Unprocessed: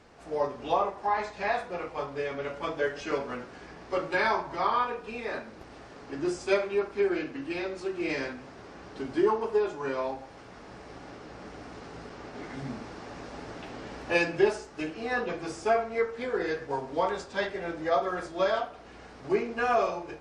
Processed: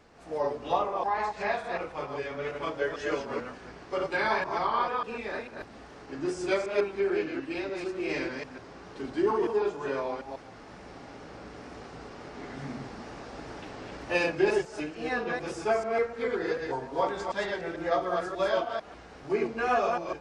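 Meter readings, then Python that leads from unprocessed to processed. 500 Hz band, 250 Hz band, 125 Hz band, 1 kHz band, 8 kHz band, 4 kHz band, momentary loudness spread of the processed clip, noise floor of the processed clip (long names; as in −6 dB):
0.0 dB, 0.0 dB, −0.5 dB, −0.5 dB, 0.0 dB, 0.0 dB, 17 LU, −48 dBFS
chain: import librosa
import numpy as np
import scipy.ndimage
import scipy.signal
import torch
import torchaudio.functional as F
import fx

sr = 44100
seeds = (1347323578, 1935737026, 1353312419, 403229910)

y = fx.reverse_delay(x, sr, ms=148, wet_db=-3)
y = fx.wow_flutter(y, sr, seeds[0], rate_hz=2.1, depth_cents=42.0)
y = y * librosa.db_to_amplitude(-2.0)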